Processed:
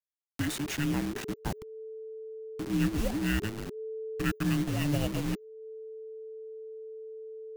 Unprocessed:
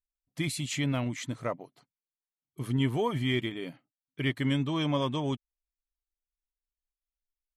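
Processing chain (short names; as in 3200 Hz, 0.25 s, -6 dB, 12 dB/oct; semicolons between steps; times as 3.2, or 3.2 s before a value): level-crossing sampler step -31 dBFS; frequency shift -440 Hz; upward compressor, threshold -38 dBFS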